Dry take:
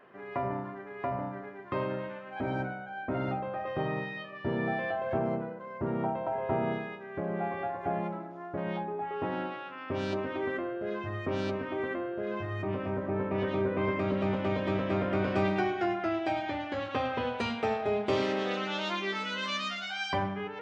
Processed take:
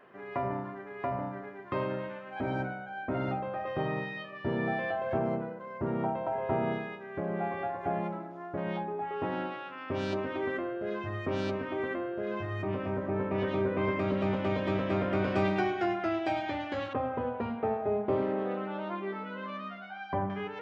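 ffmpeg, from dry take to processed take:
-filter_complex "[0:a]asettb=1/sr,asplit=3[a][b][c];[a]atrim=end=16.934[d];[b]atrim=start=16.93:end=20.3,asetpts=PTS-STARTPTS,afade=t=in:d=0.004:c=qsin,afade=t=out:st=3.366:d=0.004:c=qsin,lowpass=1.1k[e];[c]atrim=start=20.296[f];[d][e]acrossfade=d=0.004:c1=hsin:c2=qsin[g];[g][f]acrossfade=d=0.004:c1=qsin:c2=hsin"

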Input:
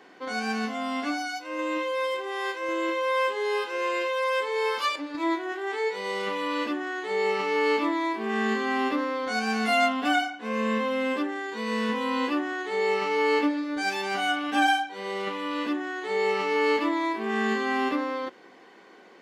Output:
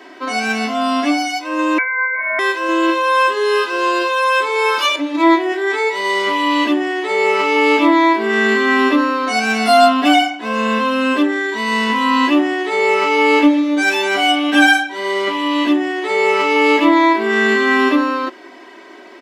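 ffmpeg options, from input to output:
-filter_complex "[0:a]asettb=1/sr,asplit=3[a][b][c];[a]atrim=end=1.784[d];[b]atrim=start=1.78:end=2.39,asetpts=PTS-STARTPTS,afade=t=in:d=0.004:c=qsin,afade=t=out:st=0.606:d=0.004:c=qsin,lowpass=f=2.2k:t=q:w=0.5098,lowpass=f=2.2k:t=q:w=0.6013,lowpass=f=2.2k:t=q:w=0.9,lowpass=f=2.2k:t=q:w=2.563,afreqshift=-2600[e];[c]atrim=start=2.386[f];[d][e]acrossfade=d=0.004:c1=hsin:c2=qsin[g];[g][f]acrossfade=d=0.004:c1=qsin:c2=hsin,highpass=220,aecho=1:1:3.1:0.98,acontrast=41,volume=4.5dB"

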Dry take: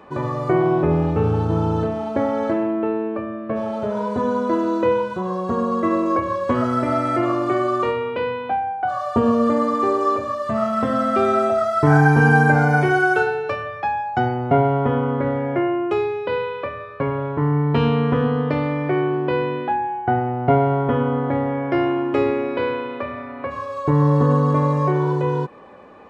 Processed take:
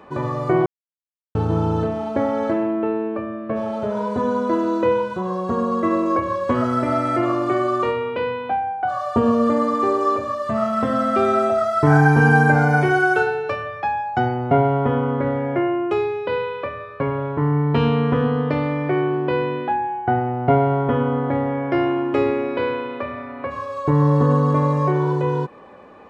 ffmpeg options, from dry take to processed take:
-filter_complex "[0:a]asplit=3[a][b][c];[a]atrim=end=0.66,asetpts=PTS-STARTPTS,afade=t=out:st=0.656:d=0.004:c=hsin[d];[b]atrim=start=0.66:end=1.35,asetpts=PTS-STARTPTS,volume=0[e];[c]atrim=start=1.35,asetpts=PTS-STARTPTS,afade=t=in:d=0.004:c=hsin[f];[d][e][f]concat=n=3:v=0:a=1"

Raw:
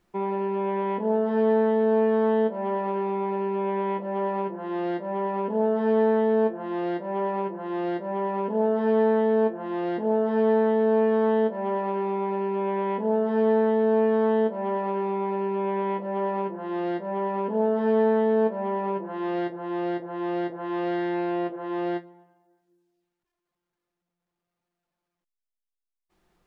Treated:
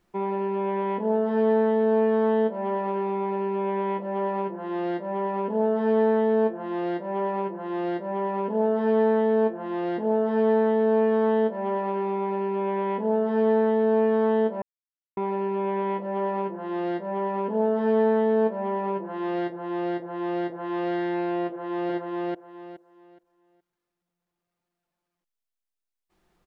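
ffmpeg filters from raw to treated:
-filter_complex "[0:a]asplit=2[a][b];[b]afade=t=in:st=21.47:d=0.01,afade=t=out:st=21.92:d=0.01,aecho=0:1:420|840|1260|1680:0.891251|0.222813|0.0557032|0.0139258[c];[a][c]amix=inputs=2:normalize=0,asplit=3[d][e][f];[d]atrim=end=14.62,asetpts=PTS-STARTPTS,afade=t=out:st=14.616:d=0.004:c=hsin[g];[e]atrim=start=14.62:end=15.17,asetpts=PTS-STARTPTS,volume=0[h];[f]atrim=start=15.17,asetpts=PTS-STARTPTS,afade=t=in:d=0.004:c=hsin[i];[g][h][i]concat=n=3:v=0:a=1"

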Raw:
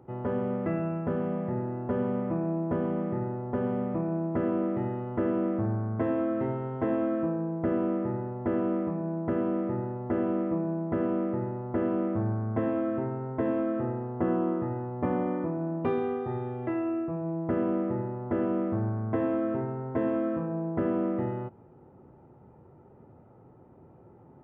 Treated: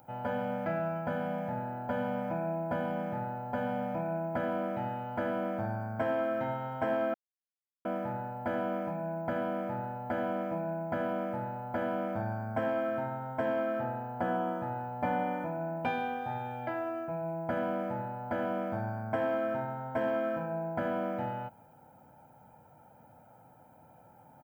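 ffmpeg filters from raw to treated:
-filter_complex "[0:a]asplit=3[a][b][c];[a]atrim=end=7.14,asetpts=PTS-STARTPTS,afade=t=out:st=7.136:d=0.004:c=hsin[d];[b]atrim=start=7.14:end=7.85,asetpts=PTS-STARTPTS,volume=0[e];[c]atrim=start=7.85,asetpts=PTS-STARTPTS,afade=t=in:d=0.004:c=hsin[f];[d][e][f]concat=n=3:v=0:a=1,aemphasis=mode=production:type=riaa,aecho=1:1:1.3:0.91"

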